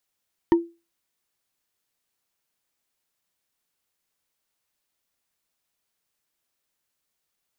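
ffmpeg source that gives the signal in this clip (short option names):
-f lavfi -i "aevalsrc='0.316*pow(10,-3*t/0.28)*sin(2*PI*338*t)+0.119*pow(10,-3*t/0.083)*sin(2*PI*931.9*t)+0.0447*pow(10,-3*t/0.037)*sin(2*PI*1826.6*t)+0.0168*pow(10,-3*t/0.02)*sin(2*PI*3019.4*t)+0.00631*pow(10,-3*t/0.013)*sin(2*PI*4508.9*t)':d=0.45:s=44100"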